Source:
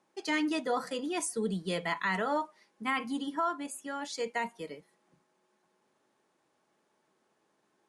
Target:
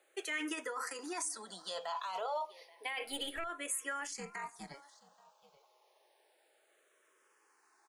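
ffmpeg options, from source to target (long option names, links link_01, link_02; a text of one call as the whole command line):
ffmpeg -i in.wav -filter_complex "[0:a]highpass=frequency=470:width=0.5412,highpass=frequency=470:width=1.3066,highshelf=frequency=11000:gain=7.5,alimiter=level_in=7.5dB:limit=-24dB:level=0:latency=1:release=14,volume=-7.5dB,acompressor=threshold=-40dB:ratio=6,asettb=1/sr,asplit=3[link_01][link_02][link_03];[link_01]atrim=end=3.044[link_04];[link_02]atrim=start=3.04:end=3.44,asetpts=PTS-STARTPTS,afade=type=in:duration=0.004:curve=qsin,afade=type=out:start_time=0.396:duration=0.004:curve=qsin,aeval=exprs='0.0237*(cos(1*acos(clip(val(0)/0.0237,-1,1)))-cos(1*PI/2))+0.0106*(cos(2*acos(clip(val(0)/0.0237,-1,1)))-cos(2*PI/2))':channel_layout=same[link_05];[link_03]atrim=start=3.436[link_06];[link_04][link_05]acrossfade=duration=0.004:curve1=hsin:curve2=qsin[link_07];[link_07][link_06]acrossfade=duration=0.004:curve1=qsin:curve2=hsin,asettb=1/sr,asplit=3[link_08][link_09][link_10];[link_08]atrim=end=4.074[link_11];[link_09]atrim=start=4.07:end=4.74,asetpts=PTS-STARTPTS,afade=type=in:duration=0.004:curve=qsin,afade=type=out:start_time=0.666:duration=0.004:curve=qsin,tremolo=f=280:d=0.889[link_12];[link_10]atrim=start=4.736[link_13];[link_11][link_12]acrossfade=duration=0.004:curve1=hsin:curve2=qsin[link_14];[link_14][link_13]acrossfade=duration=0.004:curve1=qsin:curve2=hsin,aecho=1:1:830:0.0708,asplit=2[link_15][link_16];[link_16]afreqshift=-0.3[link_17];[link_15][link_17]amix=inputs=2:normalize=1,volume=8dB" out.wav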